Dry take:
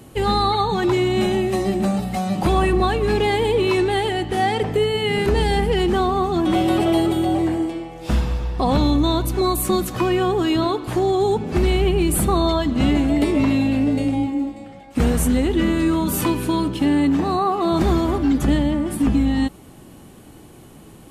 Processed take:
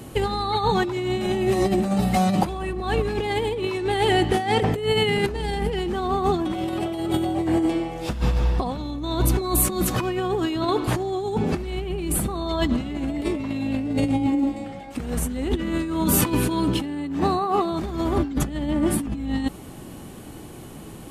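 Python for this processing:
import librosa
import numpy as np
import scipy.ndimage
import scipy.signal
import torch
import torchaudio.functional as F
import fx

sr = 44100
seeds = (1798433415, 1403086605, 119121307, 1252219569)

y = fx.over_compress(x, sr, threshold_db=-22.0, ratio=-0.5)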